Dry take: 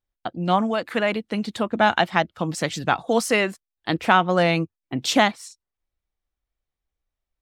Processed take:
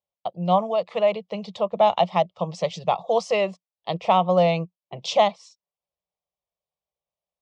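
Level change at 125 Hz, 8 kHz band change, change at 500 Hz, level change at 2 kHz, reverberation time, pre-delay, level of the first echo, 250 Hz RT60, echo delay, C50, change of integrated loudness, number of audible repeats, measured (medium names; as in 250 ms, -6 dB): -2.0 dB, -10.5 dB, +2.5 dB, -12.0 dB, no reverb, no reverb, no echo, no reverb, no echo, no reverb, -1.0 dB, no echo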